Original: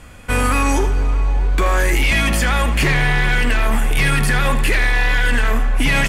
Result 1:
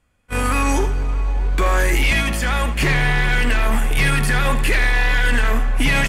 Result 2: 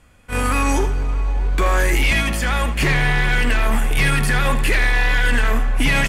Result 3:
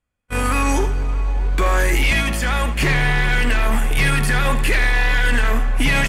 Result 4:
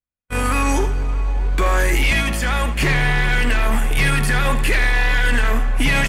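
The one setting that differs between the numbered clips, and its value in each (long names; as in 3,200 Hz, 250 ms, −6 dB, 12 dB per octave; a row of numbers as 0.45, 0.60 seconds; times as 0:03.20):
noise gate, range: −25, −12, −39, −56 decibels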